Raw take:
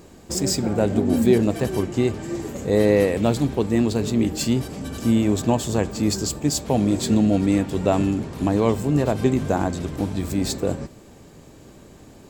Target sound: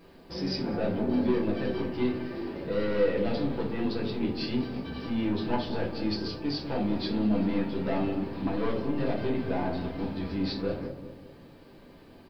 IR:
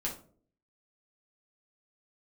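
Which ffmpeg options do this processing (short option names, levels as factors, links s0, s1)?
-filter_complex "[0:a]lowshelf=f=350:g=-8.5,aresample=11025,asoftclip=type=tanh:threshold=0.1,aresample=44100,acrusher=bits=10:mix=0:aa=0.000001,asplit=2[s0][s1];[s1]adelay=197,lowpass=f=900:p=1,volume=0.376,asplit=2[s2][s3];[s3]adelay=197,lowpass=f=900:p=1,volume=0.51,asplit=2[s4][s5];[s5]adelay=197,lowpass=f=900:p=1,volume=0.51,asplit=2[s6][s7];[s7]adelay=197,lowpass=f=900:p=1,volume=0.51,asplit=2[s8][s9];[s9]adelay=197,lowpass=f=900:p=1,volume=0.51,asplit=2[s10][s11];[s11]adelay=197,lowpass=f=900:p=1,volume=0.51[s12];[s0][s2][s4][s6][s8][s10][s12]amix=inputs=7:normalize=0[s13];[1:a]atrim=start_sample=2205[s14];[s13][s14]afir=irnorm=-1:irlink=0,volume=0.501"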